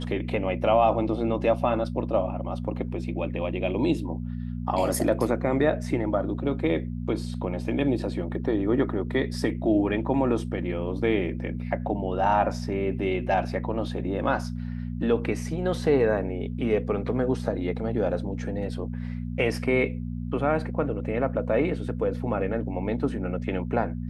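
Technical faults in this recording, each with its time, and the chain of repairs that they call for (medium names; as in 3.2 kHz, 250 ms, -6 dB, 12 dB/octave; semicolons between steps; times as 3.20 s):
hum 60 Hz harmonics 4 -32 dBFS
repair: de-hum 60 Hz, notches 4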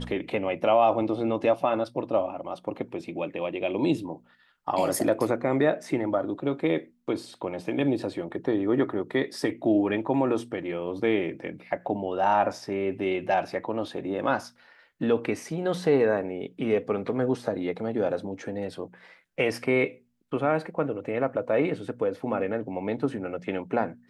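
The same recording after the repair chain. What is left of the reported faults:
nothing left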